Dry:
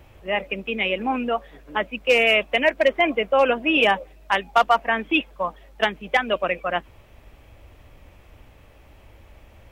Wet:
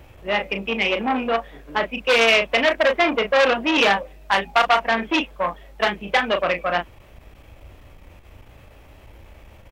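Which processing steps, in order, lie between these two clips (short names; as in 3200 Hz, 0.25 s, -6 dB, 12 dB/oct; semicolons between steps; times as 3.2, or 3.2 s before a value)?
doubler 35 ms -7 dB; core saturation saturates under 2200 Hz; gain +3.5 dB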